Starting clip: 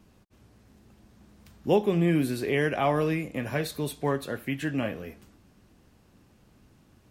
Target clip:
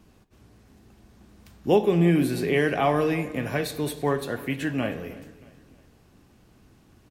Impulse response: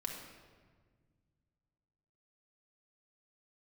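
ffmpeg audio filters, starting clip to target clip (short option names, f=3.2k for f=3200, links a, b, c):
-filter_complex "[0:a]aecho=1:1:314|628|942:0.106|0.0445|0.0187,asplit=2[a][b];[1:a]atrim=start_sample=2205,asetrate=66150,aresample=44100[c];[b][c]afir=irnorm=-1:irlink=0,volume=-3.5dB[d];[a][d]amix=inputs=2:normalize=0"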